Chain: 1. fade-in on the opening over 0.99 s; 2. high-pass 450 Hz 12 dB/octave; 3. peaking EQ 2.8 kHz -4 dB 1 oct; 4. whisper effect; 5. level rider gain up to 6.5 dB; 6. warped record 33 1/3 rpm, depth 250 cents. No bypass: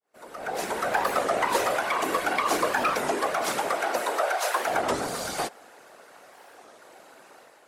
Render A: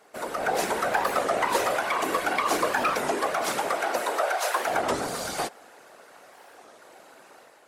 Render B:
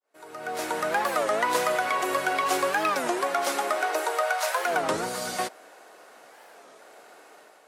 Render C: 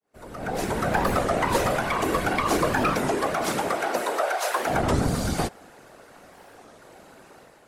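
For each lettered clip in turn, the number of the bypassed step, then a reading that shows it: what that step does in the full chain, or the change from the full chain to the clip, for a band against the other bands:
1, momentary loudness spread change -2 LU; 4, 125 Hz band -2.0 dB; 2, 125 Hz band +16.5 dB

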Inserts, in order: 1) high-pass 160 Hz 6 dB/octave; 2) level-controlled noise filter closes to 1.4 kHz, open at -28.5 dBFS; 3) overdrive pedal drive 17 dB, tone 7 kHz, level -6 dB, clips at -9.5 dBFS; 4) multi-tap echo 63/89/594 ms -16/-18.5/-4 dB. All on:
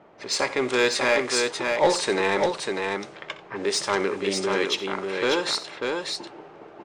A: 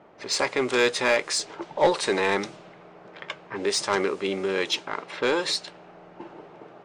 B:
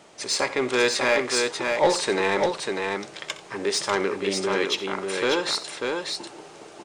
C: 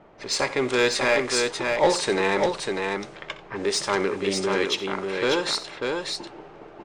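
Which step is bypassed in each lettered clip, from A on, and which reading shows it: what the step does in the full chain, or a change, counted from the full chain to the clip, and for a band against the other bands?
4, momentary loudness spread change +8 LU; 2, momentary loudness spread change +1 LU; 1, 125 Hz band +3.0 dB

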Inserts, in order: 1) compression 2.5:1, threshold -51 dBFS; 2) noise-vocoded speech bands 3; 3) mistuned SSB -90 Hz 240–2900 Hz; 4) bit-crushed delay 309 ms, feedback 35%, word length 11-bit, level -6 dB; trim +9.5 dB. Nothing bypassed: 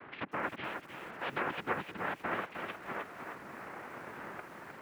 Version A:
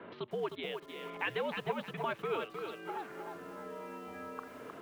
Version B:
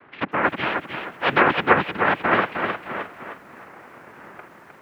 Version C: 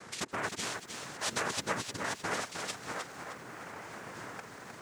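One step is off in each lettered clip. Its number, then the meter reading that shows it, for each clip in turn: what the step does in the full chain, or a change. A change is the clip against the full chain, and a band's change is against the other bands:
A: 2, 500 Hz band +5.0 dB; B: 1, mean gain reduction 8.5 dB; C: 3, 8 kHz band +24.0 dB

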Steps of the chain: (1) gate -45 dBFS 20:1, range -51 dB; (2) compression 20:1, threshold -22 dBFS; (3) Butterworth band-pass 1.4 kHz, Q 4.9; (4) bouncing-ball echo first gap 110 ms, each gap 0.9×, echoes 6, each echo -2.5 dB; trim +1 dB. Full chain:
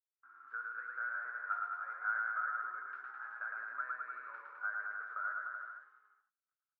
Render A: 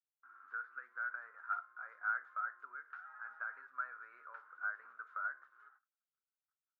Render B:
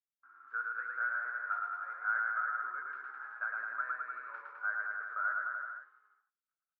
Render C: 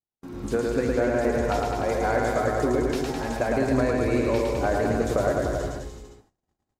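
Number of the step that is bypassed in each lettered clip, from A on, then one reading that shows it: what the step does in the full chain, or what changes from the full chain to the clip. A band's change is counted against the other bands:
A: 4, momentary loudness spread change +4 LU; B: 2, mean gain reduction 2.0 dB; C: 3, crest factor change -2.5 dB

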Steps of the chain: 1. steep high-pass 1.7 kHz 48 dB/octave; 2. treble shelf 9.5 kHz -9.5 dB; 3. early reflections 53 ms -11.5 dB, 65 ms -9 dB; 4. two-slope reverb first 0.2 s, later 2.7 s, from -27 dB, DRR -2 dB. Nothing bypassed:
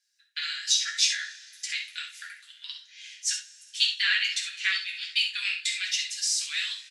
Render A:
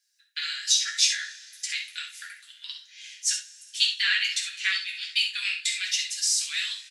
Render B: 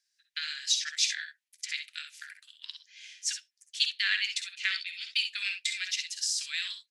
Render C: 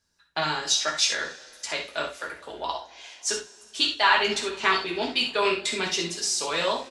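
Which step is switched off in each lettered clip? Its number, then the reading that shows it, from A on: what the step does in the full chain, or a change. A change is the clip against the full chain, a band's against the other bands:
2, 8 kHz band +2.5 dB; 4, loudness change -4.0 LU; 1, 1 kHz band +23.5 dB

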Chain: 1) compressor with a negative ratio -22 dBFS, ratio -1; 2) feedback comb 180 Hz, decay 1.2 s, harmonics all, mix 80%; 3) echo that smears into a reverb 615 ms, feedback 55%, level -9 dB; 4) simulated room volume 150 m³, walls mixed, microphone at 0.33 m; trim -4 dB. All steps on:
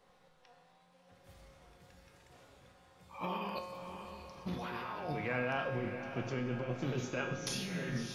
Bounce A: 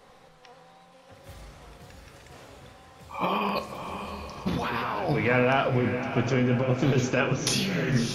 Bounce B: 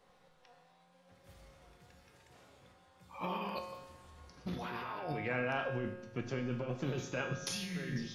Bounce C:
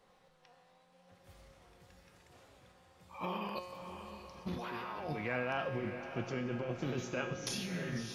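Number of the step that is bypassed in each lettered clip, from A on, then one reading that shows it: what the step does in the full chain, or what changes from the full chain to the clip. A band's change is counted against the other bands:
2, momentary loudness spread change +2 LU; 3, echo-to-direct -5.0 dB to -9.0 dB; 4, echo-to-direct -5.0 dB to -7.5 dB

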